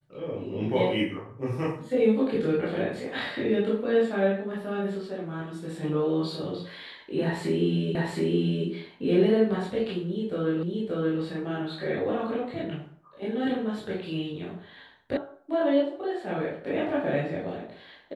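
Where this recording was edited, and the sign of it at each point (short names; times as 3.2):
7.95 repeat of the last 0.72 s
10.63 repeat of the last 0.58 s
15.17 sound cut off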